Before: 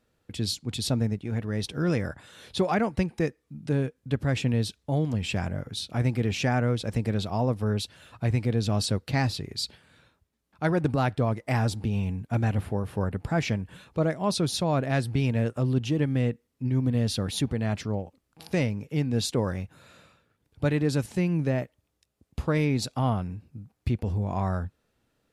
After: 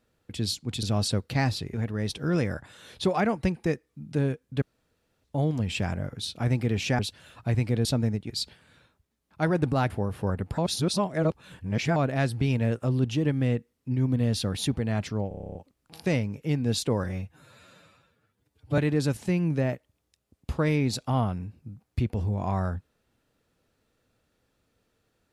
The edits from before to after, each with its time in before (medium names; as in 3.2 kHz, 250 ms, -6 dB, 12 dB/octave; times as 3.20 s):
0.83–1.28 s: swap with 8.61–9.52 s
4.16–4.78 s: room tone
6.53–7.75 s: delete
11.12–12.64 s: delete
13.32–14.70 s: reverse
18.02 s: stutter 0.03 s, 10 plays
19.51–20.67 s: stretch 1.5×